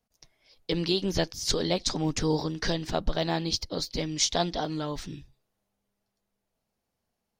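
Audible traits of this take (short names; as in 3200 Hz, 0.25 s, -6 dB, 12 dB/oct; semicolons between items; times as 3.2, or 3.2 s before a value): noise floor -83 dBFS; spectral tilt -4.0 dB/oct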